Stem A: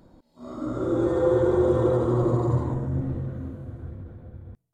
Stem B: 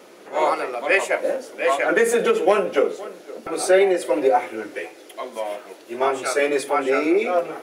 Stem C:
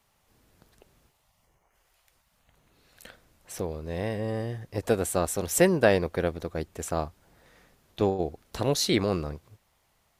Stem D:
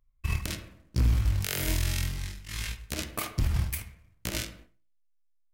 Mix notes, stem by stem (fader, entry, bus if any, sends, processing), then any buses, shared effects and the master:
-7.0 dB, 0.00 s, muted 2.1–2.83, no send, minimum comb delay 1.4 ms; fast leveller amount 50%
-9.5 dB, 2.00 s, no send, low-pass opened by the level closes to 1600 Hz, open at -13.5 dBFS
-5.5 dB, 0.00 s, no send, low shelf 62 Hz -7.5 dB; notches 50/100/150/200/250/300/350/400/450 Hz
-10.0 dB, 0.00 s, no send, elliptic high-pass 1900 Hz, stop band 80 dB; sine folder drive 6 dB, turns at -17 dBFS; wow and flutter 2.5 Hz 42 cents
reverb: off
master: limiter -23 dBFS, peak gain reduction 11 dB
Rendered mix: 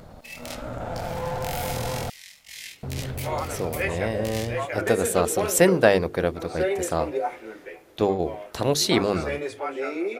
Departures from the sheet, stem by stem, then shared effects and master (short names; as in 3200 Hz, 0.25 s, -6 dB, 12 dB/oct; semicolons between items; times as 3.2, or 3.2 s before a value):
stem B: entry 2.00 s -> 2.90 s; stem C -5.5 dB -> +4.0 dB; master: missing limiter -23 dBFS, peak gain reduction 11 dB